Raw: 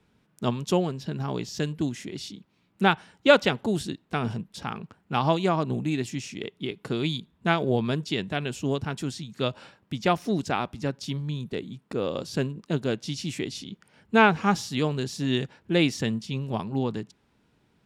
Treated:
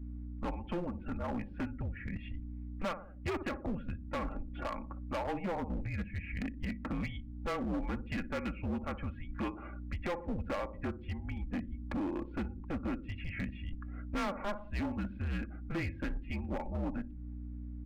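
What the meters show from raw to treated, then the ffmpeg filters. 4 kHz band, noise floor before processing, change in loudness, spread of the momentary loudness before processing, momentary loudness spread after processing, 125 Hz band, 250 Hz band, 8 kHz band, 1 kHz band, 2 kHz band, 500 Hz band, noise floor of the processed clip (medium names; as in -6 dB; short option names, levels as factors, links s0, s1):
-19.5 dB, -68 dBFS, -11.5 dB, 12 LU, 6 LU, -9.5 dB, -9.5 dB, under -20 dB, -13.0 dB, -13.5 dB, -14.0 dB, -46 dBFS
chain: -filter_complex "[0:a]asplit=2[s0][s1];[s1]adelay=60,lowpass=f=1100:p=1,volume=0.2,asplit=2[s2][s3];[s3]adelay=60,lowpass=f=1100:p=1,volume=0.49,asplit=2[s4][s5];[s5]adelay=60,lowpass=f=1100:p=1,volume=0.49,asplit=2[s6][s7];[s7]adelay=60,lowpass=f=1100:p=1,volume=0.49,asplit=2[s8][s9];[s9]adelay=60,lowpass=f=1100:p=1,volume=0.49[s10];[s0][s2][s4][s6][s8][s10]amix=inputs=6:normalize=0,highpass=f=250:t=q:w=0.5412,highpass=f=250:t=q:w=1.307,lowpass=f=2500:t=q:w=0.5176,lowpass=f=2500:t=q:w=0.7071,lowpass=f=2500:t=q:w=1.932,afreqshift=-190,aeval=exprs='val(0)+0.00398*(sin(2*PI*60*n/s)+sin(2*PI*2*60*n/s)/2+sin(2*PI*3*60*n/s)/3+sin(2*PI*4*60*n/s)/4+sin(2*PI*5*60*n/s)/5)':c=same,acompressor=threshold=0.00794:ratio=2.5,afftdn=nr=16:nf=-58,acontrast=44,aecho=1:1:3.6:0.6,asoftclip=type=hard:threshold=0.0266"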